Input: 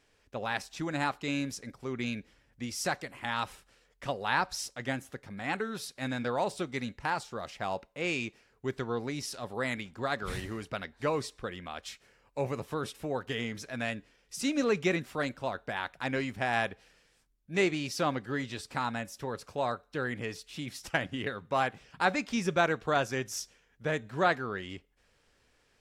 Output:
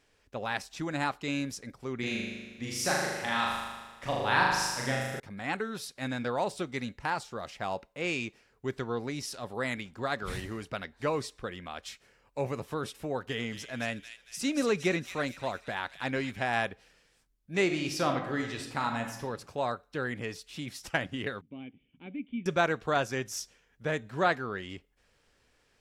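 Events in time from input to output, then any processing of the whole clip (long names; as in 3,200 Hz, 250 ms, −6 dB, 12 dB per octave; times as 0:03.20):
0:01.99–0:05.20: flutter between parallel walls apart 6.7 metres, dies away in 1.3 s
0:13.12–0:16.43: delay with a high-pass on its return 229 ms, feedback 43%, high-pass 3,100 Hz, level −5 dB
0:17.64–0:19.23: thrown reverb, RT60 0.87 s, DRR 3.5 dB
0:21.41–0:22.46: formant resonators in series i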